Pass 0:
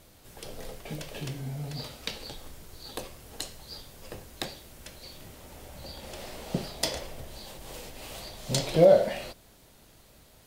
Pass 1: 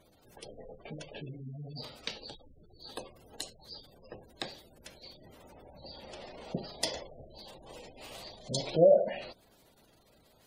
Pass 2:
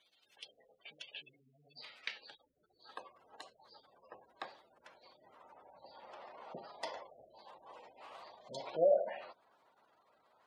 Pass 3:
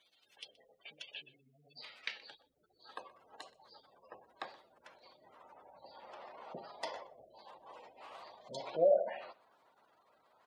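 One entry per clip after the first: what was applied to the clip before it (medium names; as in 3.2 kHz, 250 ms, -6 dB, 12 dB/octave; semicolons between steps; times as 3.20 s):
spectral gate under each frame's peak -20 dB strong; bass shelf 120 Hz -10.5 dB; trim -3 dB
band-pass sweep 3.1 kHz -> 1.1 kHz, 1.13–3.32 s; trim +4 dB
delay 124 ms -21.5 dB; trim +1 dB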